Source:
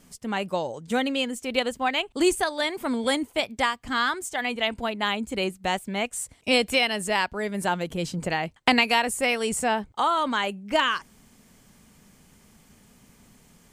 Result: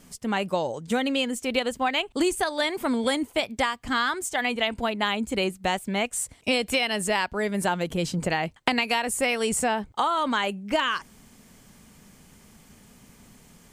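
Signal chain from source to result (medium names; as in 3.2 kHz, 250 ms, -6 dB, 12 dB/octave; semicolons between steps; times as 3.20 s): compression, threshold -23 dBFS, peak gain reduction 8.5 dB; trim +3 dB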